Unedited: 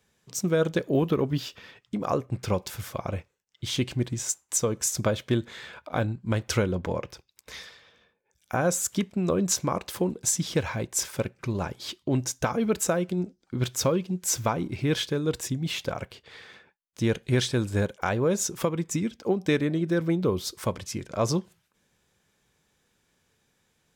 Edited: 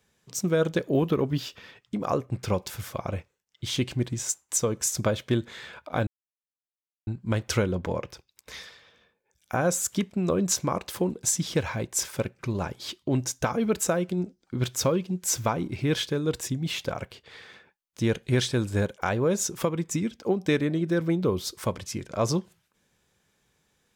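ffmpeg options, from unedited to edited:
-filter_complex "[0:a]asplit=2[a][b];[a]atrim=end=6.07,asetpts=PTS-STARTPTS,afade=t=out:st=6.066:d=0.004:c=hsin,apad=pad_dur=1[c];[b]atrim=start=6.07,asetpts=PTS-STARTPTS,afade=t=in:d=0.004:c=hsin[d];[c][d]concat=n=2:v=0:a=1"

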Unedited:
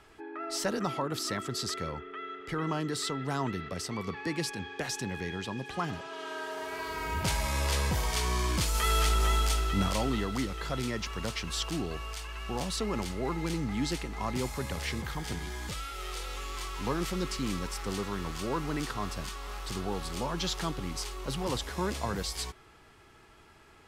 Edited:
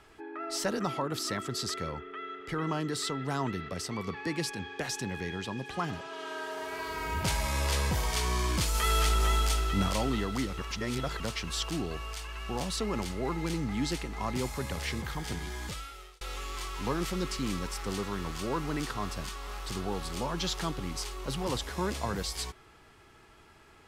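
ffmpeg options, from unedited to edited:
-filter_complex "[0:a]asplit=4[a][b][c][d];[a]atrim=end=10.582[e];[b]atrim=start=10.578:end=11.202,asetpts=PTS-STARTPTS,areverse[f];[c]atrim=start=11.198:end=16.21,asetpts=PTS-STARTPTS,afade=t=out:st=4.452:d=0.56[g];[d]atrim=start=16.21,asetpts=PTS-STARTPTS,afade=t=in:d=0.004:c=hsin[h];[e][f]acrossfade=d=0.004:c1=hsin:c2=hsin[i];[g][h]concat=n=2:v=0:a=1[j];[i][j]acrossfade=d=0.004:c1=hsin:c2=hsin"

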